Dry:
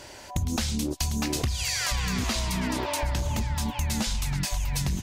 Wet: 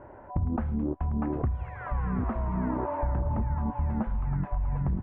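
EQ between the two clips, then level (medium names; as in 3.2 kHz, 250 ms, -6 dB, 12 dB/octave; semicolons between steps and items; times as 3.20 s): inverse Chebyshev low-pass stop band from 4.3 kHz, stop band 60 dB; 0.0 dB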